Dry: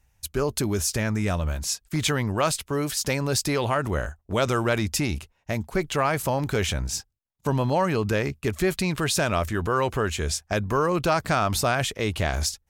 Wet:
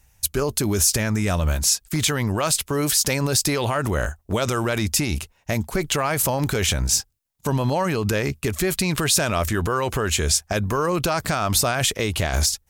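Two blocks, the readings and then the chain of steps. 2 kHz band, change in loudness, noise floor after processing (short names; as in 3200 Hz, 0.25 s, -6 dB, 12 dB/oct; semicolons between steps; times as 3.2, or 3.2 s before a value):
+2.0 dB, +3.5 dB, -63 dBFS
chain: limiter -19.5 dBFS, peak gain reduction 8.5 dB; high shelf 4900 Hz +8 dB; gain +6 dB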